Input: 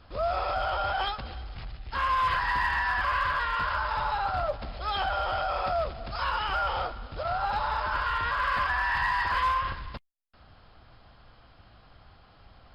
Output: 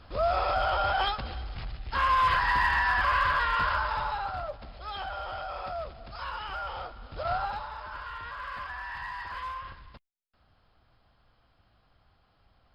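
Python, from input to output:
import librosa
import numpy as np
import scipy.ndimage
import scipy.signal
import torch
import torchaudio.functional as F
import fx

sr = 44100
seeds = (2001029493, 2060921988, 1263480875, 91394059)

y = fx.gain(x, sr, db=fx.line((3.68, 2.0), (4.53, -7.5), (6.92, -7.5), (7.33, 1.0), (7.69, -11.0)))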